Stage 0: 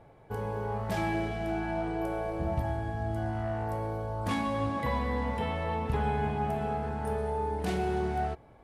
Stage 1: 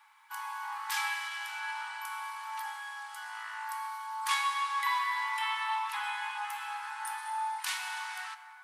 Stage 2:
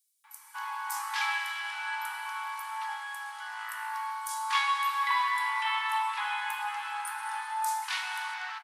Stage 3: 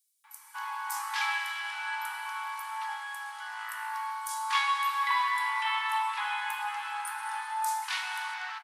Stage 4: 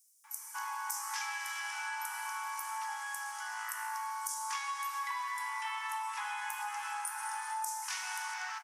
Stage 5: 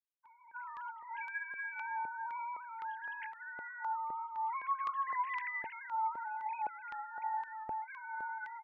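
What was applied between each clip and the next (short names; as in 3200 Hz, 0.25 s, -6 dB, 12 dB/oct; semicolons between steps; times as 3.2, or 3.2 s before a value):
steep high-pass 880 Hz 96 dB/oct; high shelf 2600 Hz +8.5 dB; plate-style reverb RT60 3.1 s, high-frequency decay 0.4×, DRR 9.5 dB; gain +3 dB
bands offset in time highs, lows 0.24 s, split 5900 Hz; gain +3 dB
nothing audible
resonant high shelf 4800 Hz +6.5 dB, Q 3; compressor 6:1, threshold -35 dBFS, peak gain reduction 12 dB
sine-wave speech; step phaser 3.9 Hz 650–3000 Hz; gain +2.5 dB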